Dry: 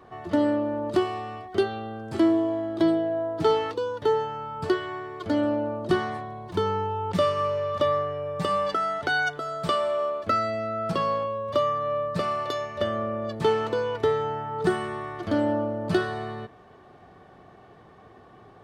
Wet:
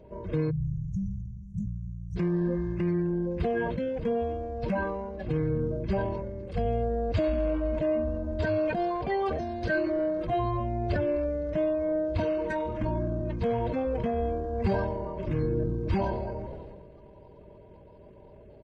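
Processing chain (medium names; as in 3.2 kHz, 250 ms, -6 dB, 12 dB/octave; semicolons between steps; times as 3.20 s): coarse spectral quantiser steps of 30 dB; pitch shift -11 st; peak limiter -19.5 dBFS, peak gain reduction 8 dB; frequency-shifting echo 255 ms, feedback 59%, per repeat -130 Hz, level -23 dB; spectral selection erased 0.50–2.16 s, 200–5500 Hz; comb 1.9 ms, depth 43%; decay stretcher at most 31 dB/s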